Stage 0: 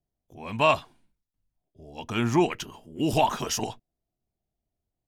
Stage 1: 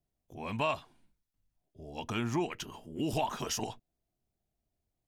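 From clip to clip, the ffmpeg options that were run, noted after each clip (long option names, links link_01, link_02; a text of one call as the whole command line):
ffmpeg -i in.wav -af "acompressor=threshold=-36dB:ratio=2" out.wav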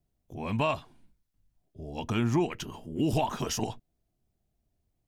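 ffmpeg -i in.wav -af "lowshelf=frequency=390:gain=7,volume=1.5dB" out.wav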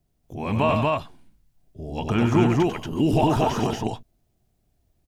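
ffmpeg -i in.wav -filter_complex "[0:a]acrossover=split=2700[link_01][link_02];[link_02]acompressor=threshold=-47dB:ratio=4:attack=1:release=60[link_03];[link_01][link_03]amix=inputs=2:normalize=0,asplit=2[link_04][link_05];[link_05]aecho=0:1:96.21|233.2:0.501|0.891[link_06];[link_04][link_06]amix=inputs=2:normalize=0,volume=6dB" out.wav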